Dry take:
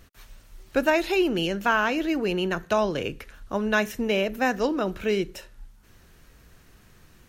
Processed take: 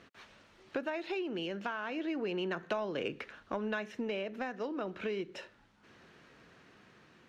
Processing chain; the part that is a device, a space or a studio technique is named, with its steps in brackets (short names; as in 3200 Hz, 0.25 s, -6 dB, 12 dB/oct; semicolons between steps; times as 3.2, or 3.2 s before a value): AM radio (BPF 200–3600 Hz; compressor 10:1, threshold -31 dBFS, peak gain reduction 15 dB; soft clip -23 dBFS, distortion -23 dB; tremolo 0.33 Hz, depth 30%); gain +1 dB